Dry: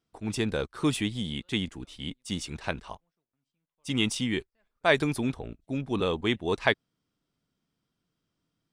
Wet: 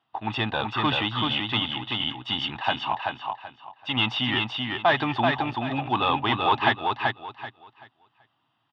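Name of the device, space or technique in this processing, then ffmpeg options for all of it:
overdrive pedal into a guitar cabinet: -filter_complex "[0:a]aecho=1:1:1.1:0.64,asplit=2[a][b];[b]highpass=f=720:p=1,volume=24dB,asoftclip=type=tanh:threshold=-6dB[c];[a][c]amix=inputs=2:normalize=0,lowpass=f=2.8k:p=1,volume=-6dB,highpass=99,equalizer=f=120:t=q:w=4:g=9,equalizer=f=180:t=q:w=4:g=-10,equalizer=f=820:t=q:w=4:g=9,equalizer=f=1.3k:t=q:w=4:g=8,equalizer=f=1.9k:t=q:w=4:g=-3,equalizer=f=3.2k:t=q:w=4:g=9,lowpass=f=3.6k:w=0.5412,lowpass=f=3.6k:w=1.3066,asettb=1/sr,asplit=3[d][e][f];[d]atrim=end=2.614[g];[e]atrim=start=2.61:end=3.97,asetpts=PTS-STARTPTS,afade=t=in:d=0.004:c=qsin,afade=t=out:st=1.356:d=0.004:c=qsin,bass=f=250:g=-4,treble=f=4k:g=-3[h];[f]atrim=start=3.966[i];[g][h]acrossfade=d=0.004:c1=hsin:c2=qsin[j];[j][i]acrossfade=d=0.004:c1=qsin:c2=hsin,aecho=1:1:383|766|1149|1532:0.668|0.167|0.0418|0.0104,volume=-7.5dB"

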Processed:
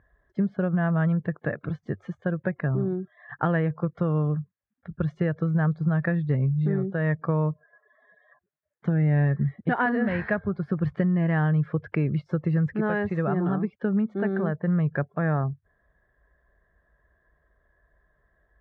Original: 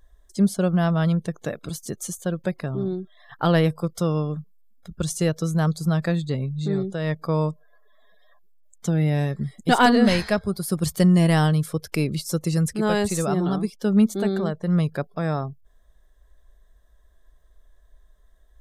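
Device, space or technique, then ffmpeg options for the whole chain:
bass amplifier: -af "acompressor=threshold=-22dB:ratio=6,highpass=79,equalizer=f=97:t=q:w=4:g=8,equalizer=f=140:t=q:w=4:g=5,equalizer=f=1.7k:t=q:w=4:g=8,lowpass=f=2.1k:w=0.5412,lowpass=f=2.1k:w=1.3066"

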